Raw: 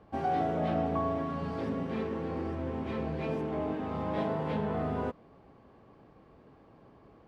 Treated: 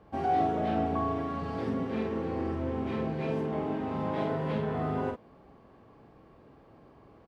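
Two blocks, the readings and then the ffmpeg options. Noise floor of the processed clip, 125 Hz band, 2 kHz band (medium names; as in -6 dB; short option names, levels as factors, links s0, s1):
-57 dBFS, +1.5 dB, +1.5 dB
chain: -filter_complex "[0:a]asplit=2[s0][s1];[s1]adelay=46,volume=0.631[s2];[s0][s2]amix=inputs=2:normalize=0"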